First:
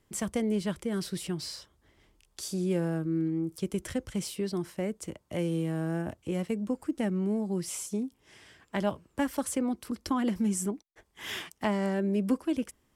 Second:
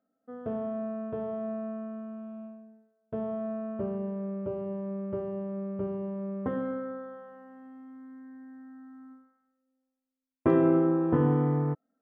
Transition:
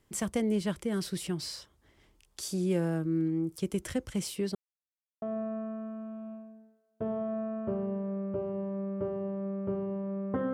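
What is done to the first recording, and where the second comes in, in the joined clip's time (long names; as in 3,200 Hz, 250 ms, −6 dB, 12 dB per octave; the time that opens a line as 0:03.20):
first
0:04.55–0:05.22: silence
0:05.22: continue with second from 0:01.34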